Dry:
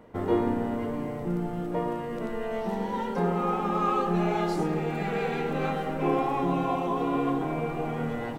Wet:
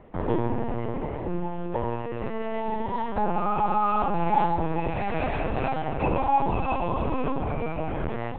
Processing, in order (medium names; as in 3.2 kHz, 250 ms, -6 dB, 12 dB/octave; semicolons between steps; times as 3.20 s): hum notches 60/120/180 Hz; in parallel at +1.5 dB: peak limiter -20 dBFS, peak gain reduction 7 dB; on the sum: small resonant body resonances 850/2600 Hz, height 13 dB, ringing for 85 ms; LPC vocoder at 8 kHz pitch kept; trim -5 dB